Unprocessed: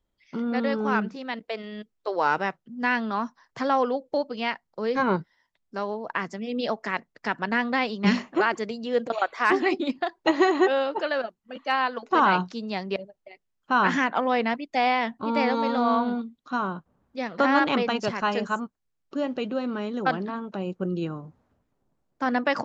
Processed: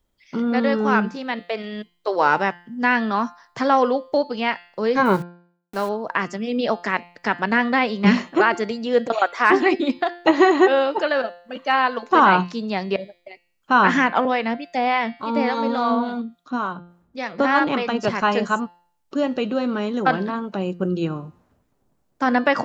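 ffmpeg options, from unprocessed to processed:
ffmpeg -i in.wav -filter_complex "[0:a]asettb=1/sr,asplit=3[link_01][link_02][link_03];[link_01]atrim=end=5.054[link_04];[link_02]atrim=start=5.05:end=5.89,asetpts=PTS-STARTPTS,afade=type=in:duration=0.004:curve=qsin,afade=type=out:start_time=0.836:duration=0.004:curve=qsin,aeval=exprs='val(0)*gte(abs(val(0)),0.00794)':channel_layout=same[link_05];[link_03]atrim=start=5.886[link_06];[link_04][link_05]acrossfade=duration=0.004:curve1=hsin:curve2=qsin[link_07];[link_07][link_06]acrossfade=duration=0.004:curve1=qsin:curve2=hsin,asettb=1/sr,asplit=3[link_08][link_09][link_10];[link_08]atrim=end=14.254[link_11];[link_09]atrim=start=14.25:end=18.05,asetpts=PTS-STARTPTS,afade=type=in:duration=0.004:curve=qsin,afade=type=out:start_time=3.796:duration=0.004:curve=qsin,acrossover=split=640[link_12][link_13];[link_12]aeval=exprs='val(0)*(1-0.7/2+0.7/2*cos(2*PI*3.5*n/s))':channel_layout=same[link_14];[link_13]aeval=exprs='val(0)*(1-0.7/2-0.7/2*cos(2*PI*3.5*n/s))':channel_layout=same[link_15];[link_14][link_15]amix=inputs=2:normalize=0[link_16];[link_10]atrim=start=18.046[link_17];[link_11][link_16]acrossfade=duration=0.004:curve1=hsin:curve2=qsin[link_18];[link_18][link_17]acrossfade=duration=0.004:curve1=qsin:curve2=hsin,bandreject=frequency=174.4:width_type=h:width=4,bandreject=frequency=348.8:width_type=h:width=4,bandreject=frequency=523.2:width_type=h:width=4,bandreject=frequency=697.6:width_type=h:width=4,bandreject=frequency=872:width_type=h:width=4,bandreject=frequency=1046.4:width_type=h:width=4,bandreject=frequency=1220.8:width_type=h:width=4,bandreject=frequency=1395.2:width_type=h:width=4,bandreject=frequency=1569.6:width_type=h:width=4,bandreject=frequency=1744:width_type=h:width=4,bandreject=frequency=1918.4:width_type=h:width=4,bandreject=frequency=2092.8:width_type=h:width=4,bandreject=frequency=2267.2:width_type=h:width=4,bandreject=frequency=2441.6:width_type=h:width=4,bandreject=frequency=2616:width_type=h:width=4,bandreject=frequency=2790.4:width_type=h:width=4,bandreject=frequency=2964.8:width_type=h:width=4,bandreject=frequency=3139.2:width_type=h:width=4,bandreject=frequency=3313.6:width_type=h:width=4,bandreject=frequency=3488:width_type=h:width=4,bandreject=frequency=3662.4:width_type=h:width=4,bandreject=frequency=3836.8:width_type=h:width=4,bandreject=frequency=4011.2:width_type=h:width=4,bandreject=frequency=4185.6:width_type=h:width=4,bandreject=frequency=4360:width_type=h:width=4,bandreject=frequency=4534.4:width_type=h:width=4,bandreject=frequency=4708.8:width_type=h:width=4,bandreject=frequency=4883.2:width_type=h:width=4,bandreject=frequency=5057.6:width_type=h:width=4,acrossover=split=3100[link_19][link_20];[link_20]acompressor=threshold=-44dB:ratio=4:attack=1:release=60[link_21];[link_19][link_21]amix=inputs=2:normalize=0,highshelf=frequency=6100:gain=5.5,volume=6dB" out.wav

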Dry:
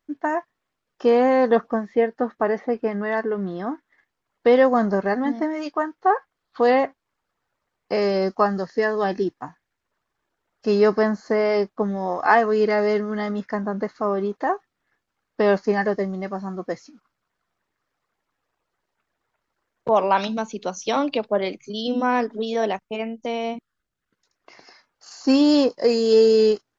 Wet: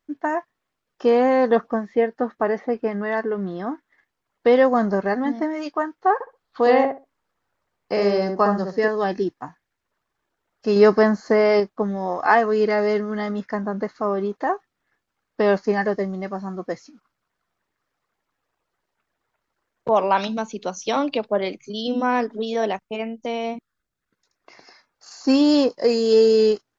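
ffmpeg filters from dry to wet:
ffmpeg -i in.wav -filter_complex "[0:a]asettb=1/sr,asplit=3[link_01][link_02][link_03];[link_01]atrim=end=6.144[link_04];[link_02]atrim=start=6.14:end=8.88,asetpts=PTS-STARTPTS,afade=type=in:duration=0.004:curve=qsin,afade=type=out:start_time=2.736:duration=0.004:curve=qsin,asplit=2[link_05][link_06];[link_06]adelay=64,lowpass=frequency=1100:poles=1,volume=-3dB,asplit=2[link_07][link_08];[link_08]adelay=64,lowpass=frequency=1100:poles=1,volume=0.21,asplit=2[link_09][link_10];[link_10]adelay=64,lowpass=frequency=1100:poles=1,volume=0.21[link_11];[link_05][link_07][link_09][link_11]amix=inputs=4:normalize=0,atrim=end_sample=120834[link_12];[link_03]atrim=start=8.876[link_13];[link_04][link_12]acrossfade=duration=0.004:curve1=hsin:curve2=qsin[link_14];[link_14][link_13]acrossfade=duration=0.004:curve1=qsin:curve2=hsin,asettb=1/sr,asplit=3[link_15][link_16][link_17];[link_15]atrim=end=23.464[link_18];[link_16]atrim=start=23.46:end=25.31,asetpts=PTS-STARTPTS,afade=type=in:duration=0.004:curve=qsin,afade=type=out:start_time=1.846:duration=0.004:curve=qsin,bandreject=frequency=3000:width=12[link_19];[link_17]atrim=start=25.306[link_20];[link_18][link_19]acrossfade=duration=0.004:curve1=hsin:curve2=qsin[link_21];[link_21][link_20]acrossfade=duration=0.004:curve1=qsin:curve2=hsin,asplit=3[link_22][link_23][link_24];[link_22]atrim=end=10.762[link_25];[link_23]atrim=start=10.758:end=11.602,asetpts=PTS-STARTPTS,volume=3.5dB[link_26];[link_24]atrim=start=11.598[link_27];[link_25][link_26]acrossfade=duration=0.004:curve1=hsin:curve2=hsin[link_28];[link_28][link_27]acrossfade=duration=0.004:curve1=hsin:curve2=hsin" out.wav

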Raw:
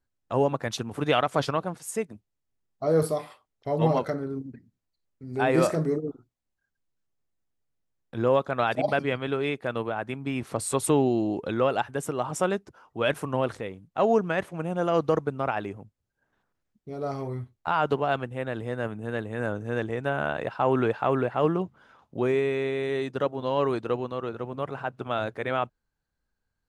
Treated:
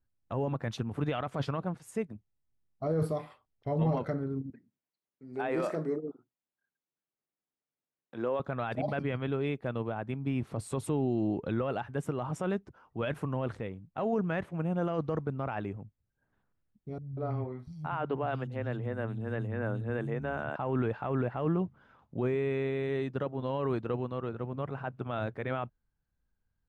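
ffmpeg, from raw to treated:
ffmpeg -i in.wav -filter_complex "[0:a]asettb=1/sr,asplit=3[link_01][link_02][link_03];[link_01]atrim=end=4.504[link_04];[link_02]atrim=start=4.5:end=8.4,asetpts=PTS-STARTPTS,afade=type=in:duration=0.004:curve=qsin,afade=type=out:start_time=3.896:duration=0.004:curve=qsin,highpass=310[link_05];[link_03]atrim=start=8.396[link_06];[link_04][link_05]acrossfade=duration=0.004:curve1=hsin:curve2=qsin[link_07];[link_07][link_06]acrossfade=duration=0.004:curve1=qsin:curve2=hsin,asettb=1/sr,asplit=3[link_08][link_09][link_10];[link_08]atrim=end=9.264[link_11];[link_09]atrim=start=9.26:end=11.17,asetpts=PTS-STARTPTS,afade=type=in:duration=0.004:curve=qsin,afade=type=out:start_time=1.906:duration=0.004:curve=qsin,equalizer=frequency=1700:width=1:gain=-3.5[link_12];[link_10]atrim=start=11.166[link_13];[link_11][link_12]acrossfade=duration=0.004:curve1=hsin:curve2=qsin[link_14];[link_14][link_13]acrossfade=duration=0.004:curve1=qsin:curve2=hsin,asettb=1/sr,asplit=3[link_15][link_16][link_17];[link_15]atrim=end=16.984[link_18];[link_16]atrim=start=16.98:end=20.56,asetpts=PTS-STARTPTS,afade=type=in:duration=0.004:curve=qsin,afade=type=out:start_time=3.576:duration=0.004:curve=qsin,acrossover=split=180|4100[link_19][link_20][link_21];[link_20]adelay=190[link_22];[link_21]adelay=610[link_23];[link_19][link_22][link_23]amix=inputs=3:normalize=0,atrim=end_sample=157878[link_24];[link_17]atrim=start=20.556[link_25];[link_18][link_24]acrossfade=duration=0.004:curve1=hsin:curve2=qsin[link_26];[link_26][link_25]acrossfade=duration=0.004:curve1=qsin:curve2=hsin,alimiter=limit=-18.5dB:level=0:latency=1:release=13,bass=frequency=250:gain=8,treble=frequency=4000:gain=-10,volume=-5.5dB" out.wav

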